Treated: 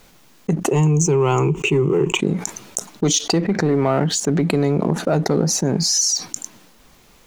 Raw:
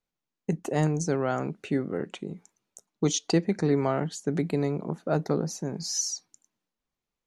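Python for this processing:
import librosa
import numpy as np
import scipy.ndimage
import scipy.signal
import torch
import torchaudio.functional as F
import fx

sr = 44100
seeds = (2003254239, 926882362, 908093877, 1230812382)

p1 = fx.env_lowpass_down(x, sr, base_hz=2500.0, full_db=-19.5, at=(3.41, 4.41), fade=0.02)
p2 = fx.leveller(p1, sr, passes=1)
p3 = fx.rider(p2, sr, range_db=10, speed_s=0.5)
p4 = p2 + F.gain(torch.from_numpy(p3), -2.0).numpy()
p5 = fx.ripple_eq(p4, sr, per_octave=0.71, db=18, at=(0.71, 2.2))
p6 = fx.env_flatten(p5, sr, amount_pct=70)
y = F.gain(torch.from_numpy(p6), -6.0).numpy()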